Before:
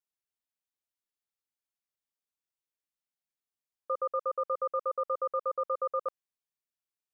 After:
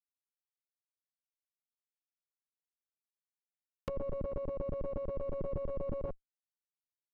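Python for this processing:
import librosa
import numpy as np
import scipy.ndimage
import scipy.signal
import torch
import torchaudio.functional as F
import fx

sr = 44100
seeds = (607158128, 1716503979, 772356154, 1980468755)

y = fx.freq_snap(x, sr, grid_st=4)
y = fx.schmitt(y, sr, flips_db=-42.5)
y = fx.env_lowpass_down(y, sr, base_hz=440.0, full_db=-41.0)
y = y * librosa.db_to_amplitude(6.5)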